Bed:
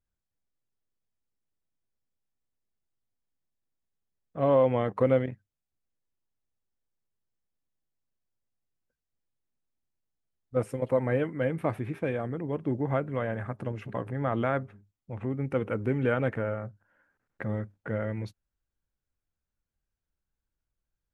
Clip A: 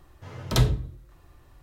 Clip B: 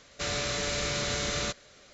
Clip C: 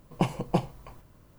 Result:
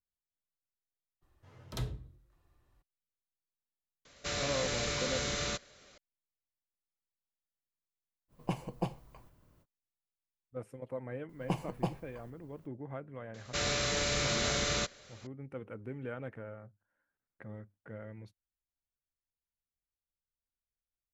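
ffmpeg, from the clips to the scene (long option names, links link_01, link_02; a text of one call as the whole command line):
ffmpeg -i bed.wav -i cue0.wav -i cue1.wav -i cue2.wav -filter_complex "[2:a]asplit=2[link_01][link_02];[3:a]asplit=2[link_03][link_04];[0:a]volume=-14.5dB[link_05];[1:a]atrim=end=1.62,asetpts=PTS-STARTPTS,volume=-16.5dB,afade=type=in:duration=0.02,afade=type=out:start_time=1.6:duration=0.02,adelay=1210[link_06];[link_01]atrim=end=1.93,asetpts=PTS-STARTPTS,volume=-4dB,afade=type=in:duration=0.004:curve=hsin,afade=type=out:start_time=1.926:duration=0.004:curve=hsin,adelay=178605S[link_07];[link_03]atrim=end=1.38,asetpts=PTS-STARTPTS,volume=-9dB,afade=type=in:duration=0.05,afade=type=out:start_time=1.33:duration=0.05,adelay=8280[link_08];[link_04]atrim=end=1.38,asetpts=PTS-STARTPTS,volume=-8dB,afade=type=in:duration=0.004:curve=hsin,afade=type=out:start_time=1.376:duration=0.004:curve=hsin,adelay=11290[link_09];[link_02]atrim=end=1.93,asetpts=PTS-STARTPTS,volume=-1dB,afade=type=in:duration=0.004:curve=hsin,afade=type=out:start_time=1.926:duration=0.004:curve=hsin,adelay=13340[link_10];[link_05][link_06][link_07][link_08][link_09][link_10]amix=inputs=6:normalize=0" out.wav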